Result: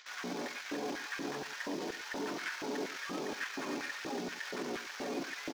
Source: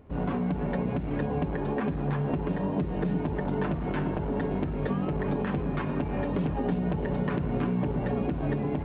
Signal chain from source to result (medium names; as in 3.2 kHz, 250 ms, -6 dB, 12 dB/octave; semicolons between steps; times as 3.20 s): CVSD coder 32 kbps; tilt EQ +4.5 dB/octave; band-stop 2.8 kHz, Q 21; reverse; upward compressor, threshold -36 dBFS; reverse; peak limiter -29.5 dBFS, peak gain reduction 10 dB; in parallel at -10 dB: bit crusher 7-bit; on the sum: saturation -36.5 dBFS, distortion -12 dB; tempo 1.6×; LFO high-pass square 2.1 Hz 290–1600 Hz; delay 105 ms -15 dB; trim +1 dB